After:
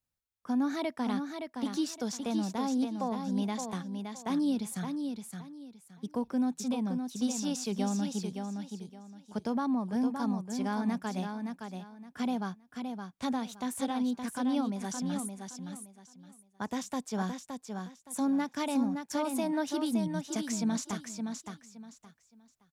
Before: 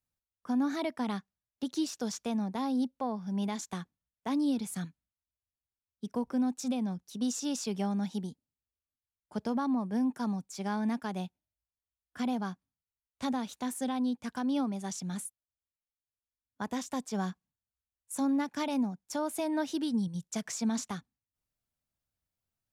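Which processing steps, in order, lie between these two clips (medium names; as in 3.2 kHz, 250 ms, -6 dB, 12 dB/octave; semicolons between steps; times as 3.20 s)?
feedback delay 568 ms, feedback 25%, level -6 dB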